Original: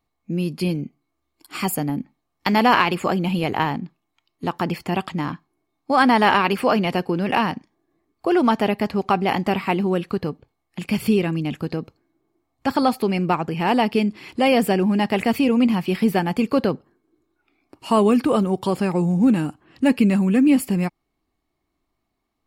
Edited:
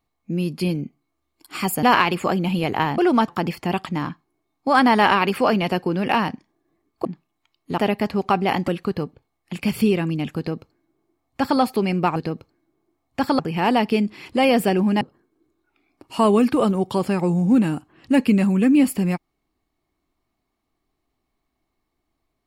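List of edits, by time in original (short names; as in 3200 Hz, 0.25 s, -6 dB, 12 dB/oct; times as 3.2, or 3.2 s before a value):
1.83–2.63 cut
3.78–4.51 swap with 8.28–8.58
9.48–9.94 cut
11.63–12.86 copy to 13.42
15.04–16.73 cut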